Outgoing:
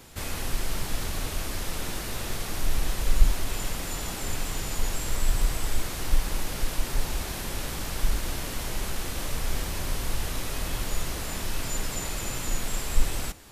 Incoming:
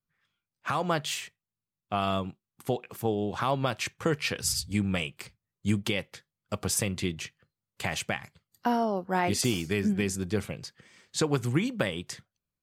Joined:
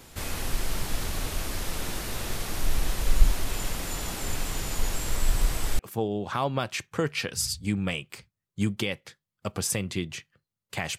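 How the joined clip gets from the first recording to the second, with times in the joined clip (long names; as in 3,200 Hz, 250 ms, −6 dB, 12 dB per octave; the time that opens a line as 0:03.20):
outgoing
0:05.79: continue with incoming from 0:02.86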